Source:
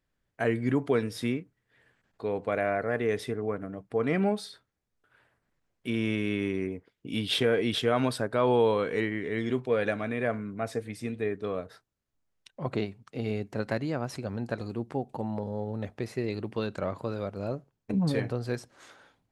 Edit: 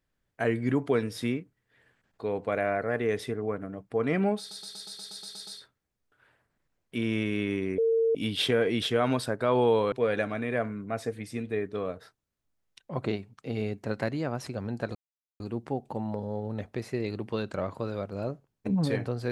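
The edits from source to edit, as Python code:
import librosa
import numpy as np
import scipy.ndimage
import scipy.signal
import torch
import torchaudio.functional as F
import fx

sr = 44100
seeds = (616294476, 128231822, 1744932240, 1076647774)

y = fx.edit(x, sr, fx.stutter(start_s=4.39, slice_s=0.12, count=10),
    fx.bleep(start_s=6.7, length_s=0.37, hz=454.0, db=-21.0),
    fx.cut(start_s=8.84, length_s=0.77),
    fx.insert_silence(at_s=14.64, length_s=0.45), tone=tone)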